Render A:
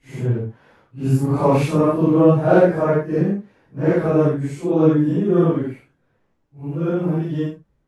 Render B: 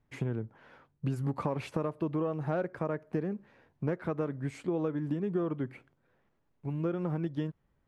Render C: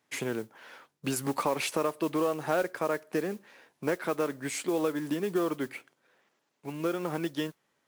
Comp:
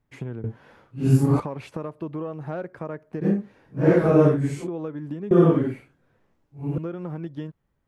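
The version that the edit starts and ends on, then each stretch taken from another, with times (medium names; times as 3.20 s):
B
0.44–1.40 s: from A
3.24–4.65 s: from A, crossfade 0.06 s
5.31–6.78 s: from A
not used: C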